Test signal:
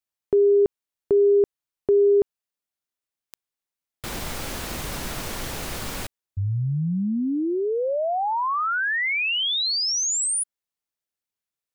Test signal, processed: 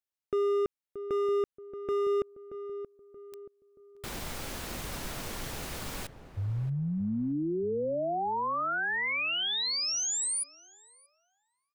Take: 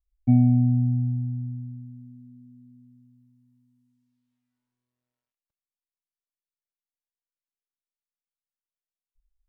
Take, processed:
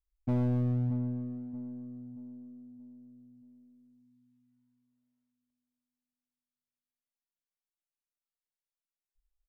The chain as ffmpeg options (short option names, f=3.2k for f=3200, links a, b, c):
-filter_complex "[0:a]asoftclip=type=hard:threshold=-18.5dB,asplit=2[a][b];[b]adelay=628,lowpass=f=1k:p=1,volume=-10dB,asplit=2[c][d];[d]adelay=628,lowpass=f=1k:p=1,volume=0.43,asplit=2[e][f];[f]adelay=628,lowpass=f=1k:p=1,volume=0.43,asplit=2[g][h];[h]adelay=628,lowpass=f=1k:p=1,volume=0.43,asplit=2[i][j];[j]adelay=628,lowpass=f=1k:p=1,volume=0.43[k];[c][e][g][i][k]amix=inputs=5:normalize=0[l];[a][l]amix=inputs=2:normalize=0,volume=-7dB"